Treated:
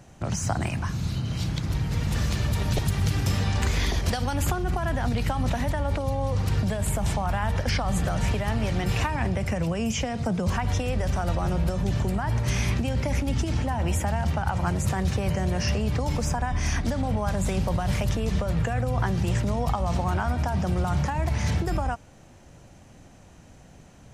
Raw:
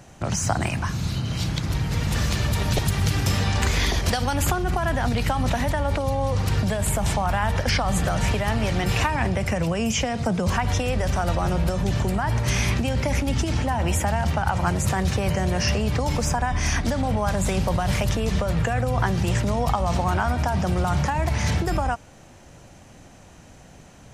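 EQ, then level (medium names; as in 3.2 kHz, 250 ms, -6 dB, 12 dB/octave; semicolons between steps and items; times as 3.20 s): bass shelf 400 Hz +4 dB; -5.5 dB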